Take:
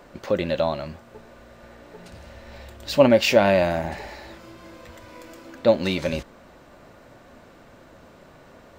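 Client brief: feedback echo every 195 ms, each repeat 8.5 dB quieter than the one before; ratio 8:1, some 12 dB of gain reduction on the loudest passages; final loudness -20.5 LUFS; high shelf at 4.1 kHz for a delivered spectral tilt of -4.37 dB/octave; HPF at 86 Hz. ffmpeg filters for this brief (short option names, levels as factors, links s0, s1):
-af "highpass=86,highshelf=f=4100:g=-9,acompressor=threshold=0.0708:ratio=8,aecho=1:1:195|390|585|780:0.376|0.143|0.0543|0.0206,volume=2.99"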